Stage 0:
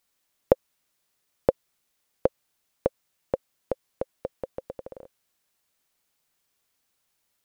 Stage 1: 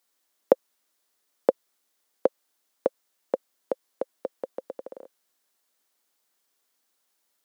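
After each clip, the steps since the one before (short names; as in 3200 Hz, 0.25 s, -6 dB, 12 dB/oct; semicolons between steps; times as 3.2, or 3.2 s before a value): HPF 230 Hz 24 dB/oct; bell 2500 Hz -4 dB 0.5 oct; gain +1 dB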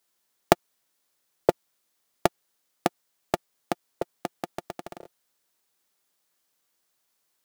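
cycle switcher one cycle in 3, inverted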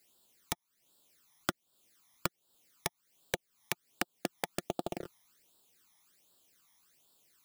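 phaser stages 12, 1.3 Hz, lowest notch 460–2100 Hz; compressor 4:1, threshold -39 dBFS, peak gain reduction 19.5 dB; wrapped overs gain 26.5 dB; gain +8.5 dB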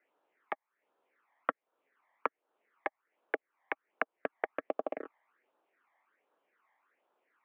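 mistuned SSB -73 Hz 470–2200 Hz; gain +4.5 dB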